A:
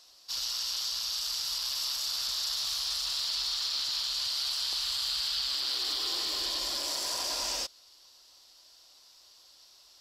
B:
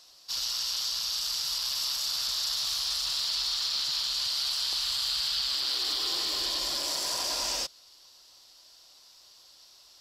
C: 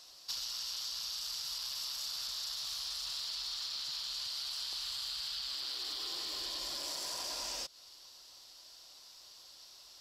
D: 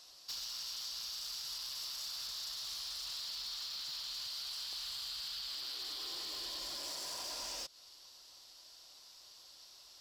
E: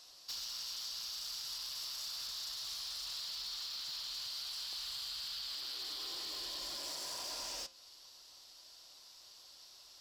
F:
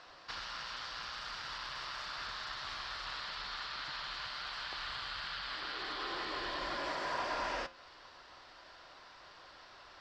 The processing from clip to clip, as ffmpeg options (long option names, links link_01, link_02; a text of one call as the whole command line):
ffmpeg -i in.wav -af "equalizer=frequency=150:width_type=o:width=0.37:gain=7,volume=2dB" out.wav
ffmpeg -i in.wav -af "acompressor=threshold=-36dB:ratio=12" out.wav
ffmpeg -i in.wav -af "asoftclip=type=hard:threshold=-35dB,volume=-2dB" out.wav
ffmpeg -i in.wav -af "flanger=delay=9.9:depth=1.4:regen=-85:speed=0.5:shape=triangular,volume=4.5dB" out.wav
ffmpeg -i in.wav -af "lowpass=frequency=1700:width_type=q:width=1.9,volume=11.5dB" out.wav